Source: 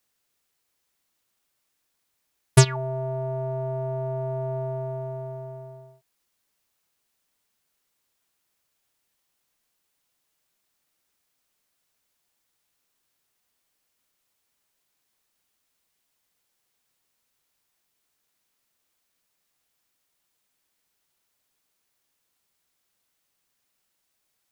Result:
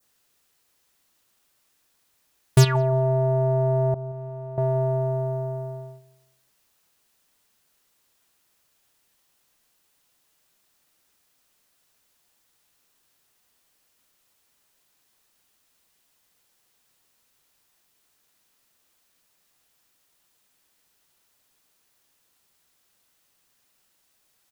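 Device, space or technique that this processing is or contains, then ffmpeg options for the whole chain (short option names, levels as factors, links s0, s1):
saturation between pre-emphasis and de-emphasis: -filter_complex "[0:a]asettb=1/sr,asplit=3[s0][s1][s2];[s0]atrim=end=3.944[s3];[s1]atrim=start=3.94:end=4.58,asetpts=PTS-STARTPTS,afade=t=in:d=0.004:c=qsin,afade=t=out:st=0.636:d=0.004:c=qsin,agate=range=0.0224:threshold=0.112:ratio=3:detection=peak[s4];[s2]atrim=start=4.576[s5];[s3][s4]acrossfade=d=0.004:c1=hsin:c2=qsin[s6];[s6][s5]acrossfade=d=0.004:c1=qsin:c2=hsin,highshelf=f=5000:g=7,bandreject=f=2200:w=26,asoftclip=type=tanh:threshold=0.133,highshelf=f=5000:g=-7,adynamicequalizer=threshold=0.00126:dfrequency=2800:dqfactor=1.1:tfrequency=2800:tqfactor=1.1:attack=5:release=100:ratio=0.375:range=3.5:mode=cutabove:tftype=bell,asplit=2[s7][s8];[s8]adelay=176,lowpass=f=1400:p=1,volume=0.106,asplit=2[s9][s10];[s10]adelay=176,lowpass=f=1400:p=1,volume=0.41,asplit=2[s11][s12];[s12]adelay=176,lowpass=f=1400:p=1,volume=0.41[s13];[s7][s9][s11][s13]amix=inputs=4:normalize=0,volume=2.37"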